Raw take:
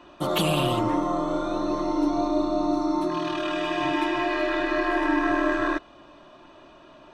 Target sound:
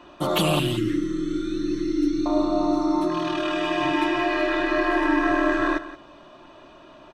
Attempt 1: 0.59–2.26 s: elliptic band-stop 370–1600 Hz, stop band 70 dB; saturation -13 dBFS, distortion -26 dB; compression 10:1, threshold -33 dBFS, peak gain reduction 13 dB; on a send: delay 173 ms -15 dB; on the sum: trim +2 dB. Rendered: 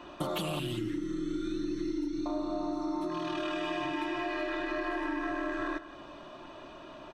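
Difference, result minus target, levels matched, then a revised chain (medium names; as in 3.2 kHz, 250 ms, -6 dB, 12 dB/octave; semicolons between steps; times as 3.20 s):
compression: peak gain reduction +13 dB; saturation: distortion +18 dB
0.59–2.26 s: elliptic band-stop 370–1600 Hz, stop band 70 dB; saturation -3 dBFS, distortion -44 dB; on a send: delay 173 ms -15 dB; on the sum: trim +2 dB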